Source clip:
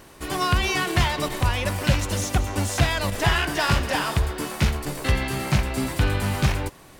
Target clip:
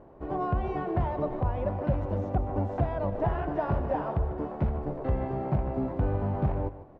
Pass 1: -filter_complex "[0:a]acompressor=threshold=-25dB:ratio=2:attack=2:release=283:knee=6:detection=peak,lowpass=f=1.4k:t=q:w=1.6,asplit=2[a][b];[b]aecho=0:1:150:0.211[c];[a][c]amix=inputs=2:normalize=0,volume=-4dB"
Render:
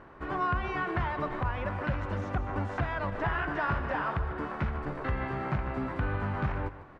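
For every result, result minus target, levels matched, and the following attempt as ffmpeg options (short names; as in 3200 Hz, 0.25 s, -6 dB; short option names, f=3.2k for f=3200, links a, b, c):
compressor: peak gain reduction +4 dB; 500 Hz band -3.5 dB
-filter_complex "[0:a]acompressor=threshold=-16.5dB:ratio=2:attack=2:release=283:knee=6:detection=peak,lowpass=f=1.4k:t=q:w=1.6,asplit=2[a][b];[b]aecho=0:1:150:0.211[c];[a][c]amix=inputs=2:normalize=0,volume=-4dB"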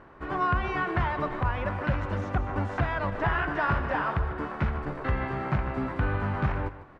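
500 Hz band -4.0 dB
-filter_complex "[0:a]acompressor=threshold=-16.5dB:ratio=2:attack=2:release=283:knee=6:detection=peak,lowpass=f=690:t=q:w=1.6,asplit=2[a][b];[b]aecho=0:1:150:0.211[c];[a][c]amix=inputs=2:normalize=0,volume=-4dB"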